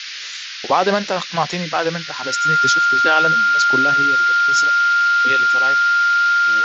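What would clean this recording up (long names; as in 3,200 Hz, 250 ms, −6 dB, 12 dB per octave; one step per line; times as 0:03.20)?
notch filter 1,400 Hz, Q 30
noise reduction from a noise print 30 dB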